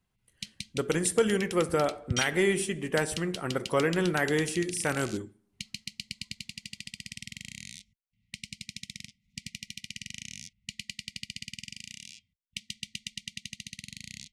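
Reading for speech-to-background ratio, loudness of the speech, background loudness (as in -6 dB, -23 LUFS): 12.0 dB, -28.5 LUFS, -40.5 LUFS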